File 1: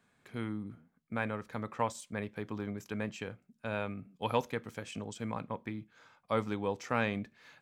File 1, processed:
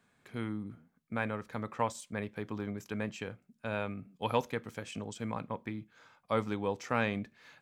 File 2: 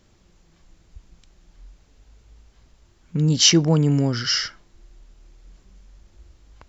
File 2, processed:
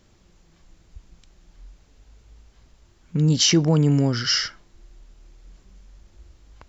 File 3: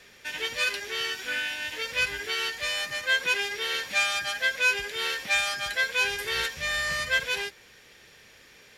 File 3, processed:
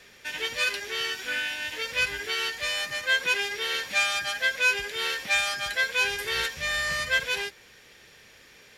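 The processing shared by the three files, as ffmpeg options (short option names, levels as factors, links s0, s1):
-af "alimiter=level_in=2.37:limit=0.891:release=50:level=0:latency=1,volume=0.447"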